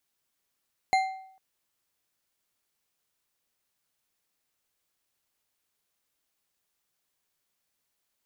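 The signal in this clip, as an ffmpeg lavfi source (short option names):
-f lavfi -i "aevalsrc='0.126*pow(10,-3*t/0.66)*sin(2*PI*762*t)+0.0562*pow(10,-3*t/0.487)*sin(2*PI*2100.8*t)+0.0251*pow(10,-3*t/0.398)*sin(2*PI*4117.8*t)+0.0112*pow(10,-3*t/0.342)*sin(2*PI*6806.9*t)+0.00501*pow(10,-3*t/0.303)*sin(2*PI*10165.1*t)':d=0.45:s=44100"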